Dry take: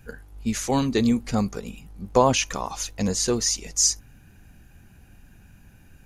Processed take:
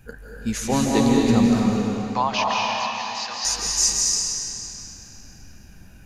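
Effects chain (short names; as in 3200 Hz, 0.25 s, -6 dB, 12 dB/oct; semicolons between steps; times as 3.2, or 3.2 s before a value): 1.62–3.45 elliptic band-pass 790–4900 Hz, stop band 50 dB; digital reverb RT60 3.2 s, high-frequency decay 0.9×, pre-delay 0.12 s, DRR -3 dB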